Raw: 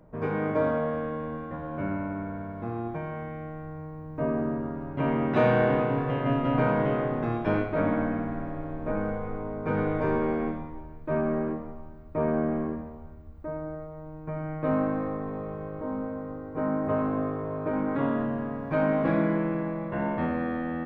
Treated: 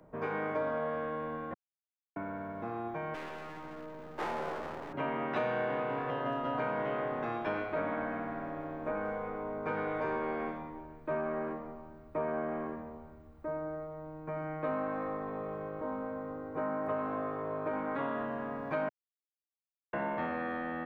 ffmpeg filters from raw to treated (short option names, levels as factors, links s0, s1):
-filter_complex "[0:a]asettb=1/sr,asplit=3[s0][s1][s2];[s0]atrim=end=3.144[s3];[s1]atrim=start=3.14:end=4.93,asetpts=PTS-STARTPTS,afade=t=in:d=0.004:c=qsin,afade=t=out:st=1.786:d=0.004:c=qsin,aeval=exprs='abs(val(0))':c=same[s4];[s2]atrim=start=4.926[s5];[s3][s4]acrossfade=d=0.004:c1=hsin:c2=qsin[s6];[s6][s5]acrossfade=d=0.004:c1=qsin:c2=hsin,asettb=1/sr,asplit=3[s7][s8][s9];[s7]atrim=end=6.104[s10];[s8]atrim=start=6.1:end=6.6,asetpts=PTS-STARTPTS,afade=t=in:d=0.004:c=qsin,afade=t=out:st=0.496:d=0.004:c=qsin,equalizer=f=2300:t=o:w=0.35:g=-12[s11];[s9]atrim=start=6.596[s12];[s10][s11]acrossfade=d=0.004:c1=hsin:c2=qsin[s13];[s13][s12]acrossfade=d=0.004:c1=qsin:c2=hsin,asplit=5[s14][s15][s16][s17][s18];[s14]atrim=end=1.54,asetpts=PTS-STARTPTS,afade=t=out:st=1.536:d=0.004:c=hsin[s19];[s15]atrim=start=1.54:end=2.16,asetpts=PTS-STARTPTS,volume=0[s20];[s16]atrim=start=2.16:end=18.89,asetpts=PTS-STARTPTS,afade=t=in:d=0.004:c=hsin,afade=t=out:st=16.726:d=0.004:c=hsin[s21];[s17]atrim=start=18.89:end=19.93,asetpts=PTS-STARTPTS,volume=0[s22];[s18]atrim=start=19.93,asetpts=PTS-STARTPTS,afade=t=in:d=0.004:c=hsin[s23];[s19][s20][s21][s22][s23]concat=n=5:v=0:a=1,lowshelf=f=170:g=-10,acrossover=split=150|540[s24][s25][s26];[s24]acompressor=threshold=0.00224:ratio=4[s27];[s25]acompressor=threshold=0.00891:ratio=4[s28];[s26]acompressor=threshold=0.0224:ratio=4[s29];[s27][s28][s29]amix=inputs=3:normalize=0"